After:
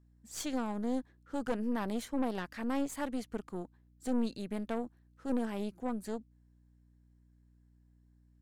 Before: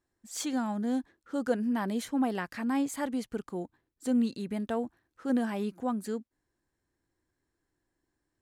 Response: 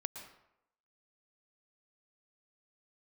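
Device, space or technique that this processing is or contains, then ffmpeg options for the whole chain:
valve amplifier with mains hum: -filter_complex "[0:a]asettb=1/sr,asplit=3[link_01][link_02][link_03];[link_01]atrim=end=4.754[link_04];[link_02]atrim=start=4.75:end=6.02,asetpts=PTS-STARTPTS,afade=type=in:duration=0.004:curve=qsin,afade=type=out:start_time=1.266:duration=0.004:curve=qsin,equalizer=frequency=1200:width_type=o:width=2.2:gain=-3.5[link_05];[link_03]atrim=start=6.016[link_06];[link_04][link_05]acrossfade=duration=0.004:curve1=hsin:curve2=qsin[link_07];[link_07][link_06]acrossfade=duration=0.004:curve1=qsin:curve2=hsin,aeval=exprs='(tanh(22.4*val(0)+0.8)-tanh(0.8))/22.4':channel_layout=same,aeval=exprs='val(0)+0.000708*(sin(2*PI*60*n/s)+sin(2*PI*2*60*n/s)/2+sin(2*PI*3*60*n/s)/3+sin(2*PI*4*60*n/s)/4+sin(2*PI*5*60*n/s)/5)':channel_layout=same"

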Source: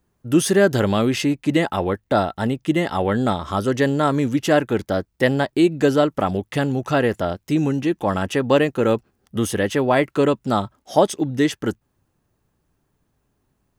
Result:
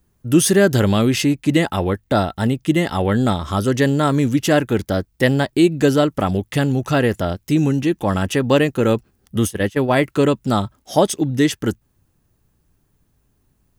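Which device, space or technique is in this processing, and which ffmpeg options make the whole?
smiley-face EQ: -filter_complex "[0:a]lowshelf=frequency=92:gain=6.5,equalizer=frequency=790:width_type=o:width=2.4:gain=-4,highshelf=frequency=8700:gain=6,asplit=3[link_01][link_02][link_03];[link_01]afade=type=out:start_time=9.45:duration=0.02[link_04];[link_02]agate=range=-19dB:threshold=-21dB:ratio=16:detection=peak,afade=type=in:start_time=9.45:duration=0.02,afade=type=out:start_time=10.03:duration=0.02[link_05];[link_03]afade=type=in:start_time=10.03:duration=0.02[link_06];[link_04][link_05][link_06]amix=inputs=3:normalize=0,volume=3.5dB"

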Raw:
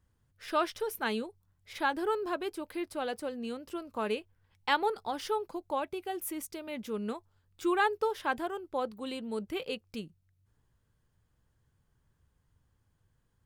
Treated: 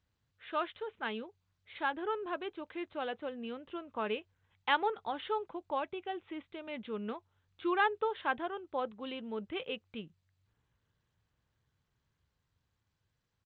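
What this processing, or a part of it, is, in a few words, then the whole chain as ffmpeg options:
Bluetooth headset: -af "highpass=frequency=100:poles=1,equalizer=frequency=300:width_type=o:width=2.4:gain=-3,dynaudnorm=framelen=220:gausssize=21:maxgain=3.5dB,aresample=8000,aresample=44100,volume=-4dB" -ar 16000 -c:a sbc -b:a 64k

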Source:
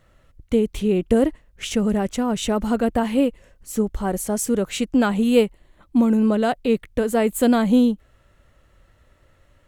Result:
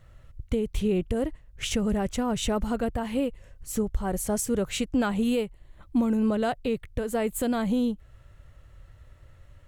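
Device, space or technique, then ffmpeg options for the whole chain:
car stereo with a boomy subwoofer: -af "lowshelf=frequency=160:width_type=q:width=1.5:gain=7.5,alimiter=limit=-15.5dB:level=0:latency=1:release=410,volume=-1.5dB"

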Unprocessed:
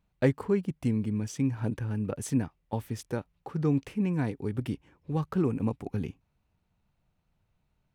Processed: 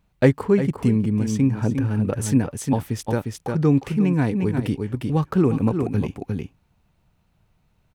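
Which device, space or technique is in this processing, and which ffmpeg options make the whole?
ducked delay: -filter_complex "[0:a]asplit=3[link_01][link_02][link_03];[link_02]adelay=354,volume=-3.5dB[link_04];[link_03]apad=whole_len=365879[link_05];[link_04][link_05]sidechaincompress=threshold=-33dB:ratio=8:attack=6:release=142[link_06];[link_01][link_06]amix=inputs=2:normalize=0,asettb=1/sr,asplit=3[link_07][link_08][link_09];[link_07]atrim=end=0.764[link_10];[link_08]atrim=start=0.76:end=1.84,asetpts=PTS-STARTPTS,afade=type=in:duration=0.004:curve=qsin,afade=type=out:start_time=1.076:duration=0.004:curve=qsin,adynamicequalizer=threshold=0.00398:dfrequency=1500:dqfactor=0.7:tfrequency=1500:tqfactor=0.7:attack=5:release=100:ratio=0.375:range=1.5:mode=cutabove:tftype=highshelf[link_11];[link_09]atrim=start=1.836[link_12];[link_10][link_11]acrossfade=duration=0.004:curve1=hsin:curve2=qsin[link_13];[link_13][link_12]acrossfade=duration=0.004:curve1=qsin:curve2=hsin,volume=8.5dB"

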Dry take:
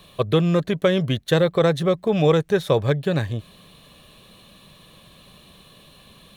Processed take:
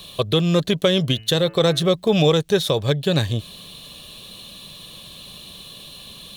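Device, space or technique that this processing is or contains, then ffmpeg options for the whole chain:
over-bright horn tweeter: -filter_complex "[0:a]highshelf=frequency=2600:width_type=q:width=1.5:gain=7.5,alimiter=limit=-11dB:level=0:latency=1:release=459,asettb=1/sr,asplit=3[link_01][link_02][link_03];[link_01]atrim=end=1.024[link_04];[link_02]atrim=start=1.02:end=1.9,asetpts=PTS-STARTPTS,afade=type=in:duration=0.004:curve=qsin,afade=type=out:start_time=0.876:duration=0.004:curve=qsin,bandreject=frequency=110.1:width_type=h:width=4,bandreject=frequency=220.2:width_type=h:width=4,bandreject=frequency=330.3:width_type=h:width=4,bandreject=frequency=440.4:width_type=h:width=4,bandreject=frequency=550.5:width_type=h:width=4,bandreject=frequency=660.6:width_type=h:width=4,bandreject=frequency=770.7:width_type=h:width=4,bandreject=frequency=880.8:width_type=h:width=4,bandreject=frequency=990.9:width_type=h:width=4,bandreject=frequency=1101:width_type=h:width=4,bandreject=frequency=1211.1:width_type=h:width=4,bandreject=frequency=1321.2:width_type=h:width=4,bandreject=frequency=1431.3:width_type=h:width=4,bandreject=frequency=1541.4:width_type=h:width=4,bandreject=frequency=1651.5:width_type=h:width=4,bandreject=frequency=1761.6:width_type=h:width=4,bandreject=frequency=1871.7:width_type=h:width=4,bandreject=frequency=1981.8:width_type=h:width=4,bandreject=frequency=2091.9:width_type=h:width=4,bandreject=frequency=2202:width_type=h:width=4,bandreject=frequency=2312.1:width_type=h:width=4,bandreject=frequency=2422.2:width_type=h:width=4,bandreject=frequency=2532.3:width_type=h:width=4,bandreject=frequency=2642.4:width_type=h:width=4,bandreject=frequency=2752.5:width_type=h:width=4,bandreject=frequency=2862.6:width_type=h:width=4,bandreject=frequency=2972.7:width_type=h:width=4[link_05];[link_03]atrim=start=1.896[link_06];[link_04][link_05]acrossfade=duration=0.004:curve1=hsin:curve2=qsin[link_07];[link_07][link_06]acrossfade=duration=0.004:curve1=qsin:curve2=hsin,volume=4dB"

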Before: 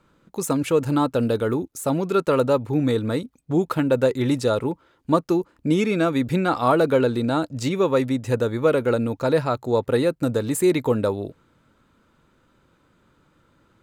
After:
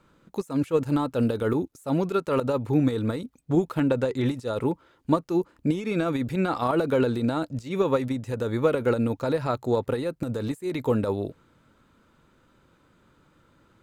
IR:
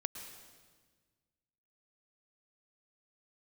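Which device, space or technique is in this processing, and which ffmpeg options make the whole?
de-esser from a sidechain: -filter_complex "[0:a]asettb=1/sr,asplit=3[link_01][link_02][link_03];[link_01]atrim=end=3.804[link_04];[link_02]atrim=start=3.8:end=4.26,asetpts=PTS-STARTPTS,afade=type=in:duration=0.004:curve=qsin,afade=type=out:start_time=0.456:duration=0.004:curve=qsin,lowpass=8800[link_05];[link_03]atrim=start=4.256[link_06];[link_04][link_05]acrossfade=duration=0.004:curve1=hsin:curve2=qsin[link_07];[link_07][link_06]acrossfade=duration=0.004:curve1=qsin:curve2=hsin,asplit=2[link_08][link_09];[link_09]highpass=frequency=5200:width=0.5412,highpass=frequency=5200:width=1.3066,apad=whole_len=609551[link_10];[link_08][link_10]sidechaincompress=threshold=-50dB:ratio=8:attack=2.2:release=59"

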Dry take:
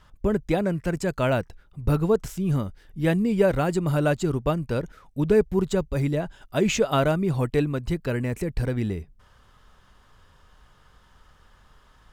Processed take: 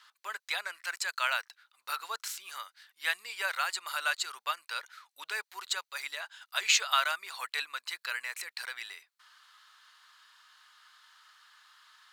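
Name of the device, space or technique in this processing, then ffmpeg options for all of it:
headphones lying on a table: -af "highpass=frequency=1200:width=0.5412,highpass=frequency=1200:width=1.3066,equalizer=frequency=4200:width_type=o:width=0.29:gain=9,volume=2.5dB"

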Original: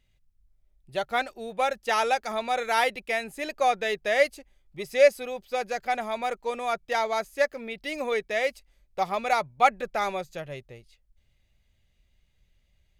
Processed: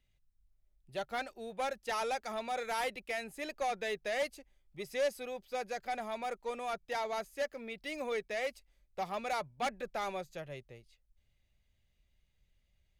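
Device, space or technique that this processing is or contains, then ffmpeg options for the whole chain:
one-band saturation: -filter_complex "[0:a]acrossover=split=350|4900[link_01][link_02][link_03];[link_02]asoftclip=type=tanh:threshold=-23.5dB[link_04];[link_01][link_04][link_03]amix=inputs=3:normalize=0,volume=-7dB"

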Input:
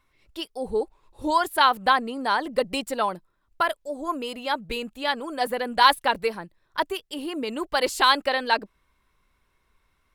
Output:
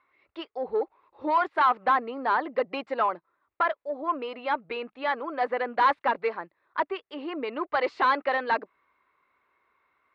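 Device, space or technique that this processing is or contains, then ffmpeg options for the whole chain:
overdrive pedal into a guitar cabinet: -filter_complex "[0:a]asplit=2[link_01][link_02];[link_02]highpass=frequency=720:poles=1,volume=18dB,asoftclip=type=tanh:threshold=-5dB[link_03];[link_01][link_03]amix=inputs=2:normalize=0,lowpass=frequency=1000:poles=1,volume=-6dB,highpass=110,equalizer=frequency=130:width_type=q:width=4:gain=-9,equalizer=frequency=200:width_type=q:width=4:gain=-9,equalizer=frequency=1200:width_type=q:width=4:gain=5,equalizer=frequency=2100:width_type=q:width=4:gain=5,equalizer=frequency=3200:width_type=q:width=4:gain=-5,lowpass=frequency=4000:width=0.5412,lowpass=frequency=4000:width=1.3066,volume=-7dB"

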